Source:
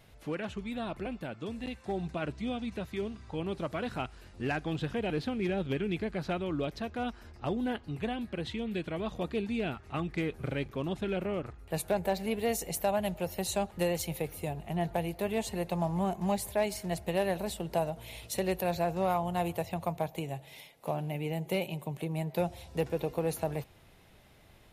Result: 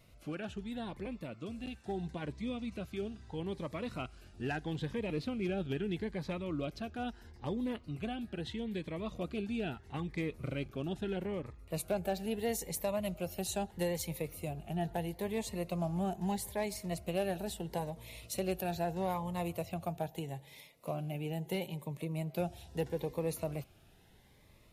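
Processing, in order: Shepard-style phaser rising 0.77 Hz; trim -3 dB

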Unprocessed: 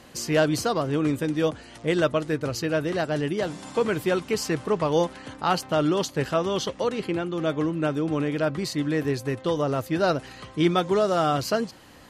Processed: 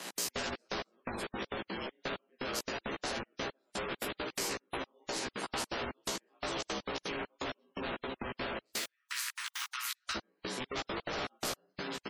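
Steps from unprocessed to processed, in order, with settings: ever faster or slower copies 180 ms, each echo -2 st, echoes 3, each echo -6 dB; short-mantissa float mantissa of 4-bit; steep high-pass 250 Hz 48 dB/octave, from 8.61 s 1.3 kHz, from 10.14 s 230 Hz; ring modulator 59 Hz; plate-style reverb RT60 0.57 s, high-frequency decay 0.85×, pre-delay 0 ms, DRR -2 dB; trance gate "x.x.xx..x...xx." 168 bpm -60 dB; hard clipper -25 dBFS, distortion -6 dB; spectral gate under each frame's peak -30 dB strong; compression, threshold -33 dBFS, peak gain reduction 7 dB; doubling 15 ms -3 dB; spectrum-flattening compressor 2:1

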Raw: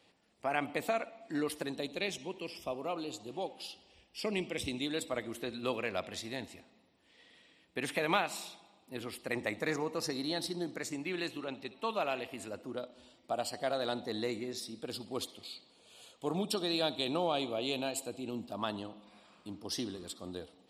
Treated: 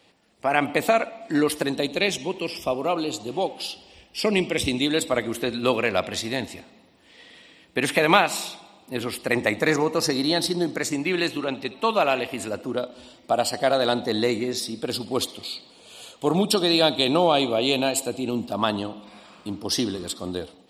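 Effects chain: level rider gain up to 5 dB; trim +8 dB

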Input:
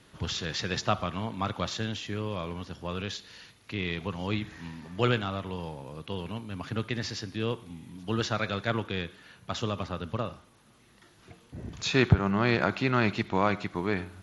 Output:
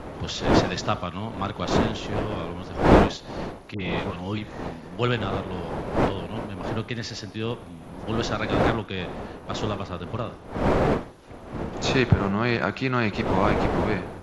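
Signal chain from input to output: wind noise 610 Hz -29 dBFS; 3.74–4.38 s: phase dispersion highs, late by 65 ms, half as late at 1.2 kHz; trim +1.5 dB

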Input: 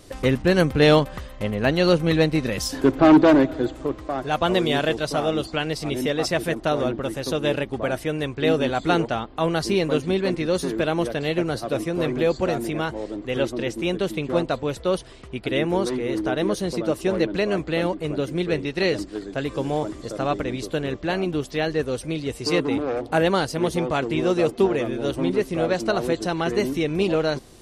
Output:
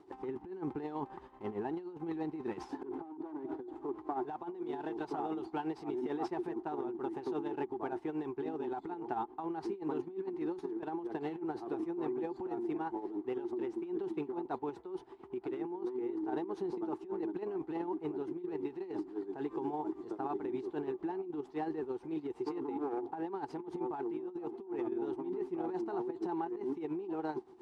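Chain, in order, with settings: CVSD coder 64 kbps; tremolo 8.8 Hz, depth 72%; two resonant band-passes 560 Hz, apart 1.2 oct; compressor with a negative ratio -38 dBFS, ratio -1

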